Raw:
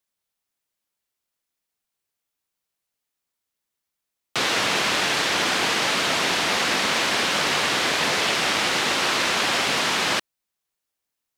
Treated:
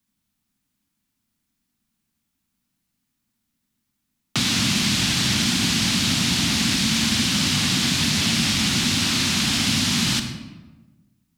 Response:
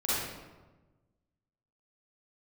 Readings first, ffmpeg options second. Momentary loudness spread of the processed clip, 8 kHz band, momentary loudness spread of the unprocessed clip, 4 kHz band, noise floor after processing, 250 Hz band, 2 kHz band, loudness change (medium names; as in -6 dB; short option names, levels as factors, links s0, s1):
2 LU, +4.5 dB, 1 LU, +2.5 dB, -77 dBFS, +9.5 dB, -4.0 dB, +1.5 dB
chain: -filter_complex "[0:a]lowshelf=f=330:t=q:w=3:g=11.5,acrossover=split=120|3000[s0][s1][s2];[s1]acompressor=threshold=0.0251:ratio=6[s3];[s0][s3][s2]amix=inputs=3:normalize=0,asplit=2[s4][s5];[1:a]atrim=start_sample=2205[s6];[s5][s6]afir=irnorm=-1:irlink=0,volume=0.211[s7];[s4][s7]amix=inputs=2:normalize=0,volume=1.41"